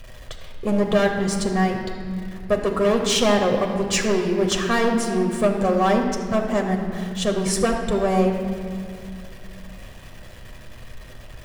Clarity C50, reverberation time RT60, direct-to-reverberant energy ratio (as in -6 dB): 5.0 dB, 2.3 s, 1.0 dB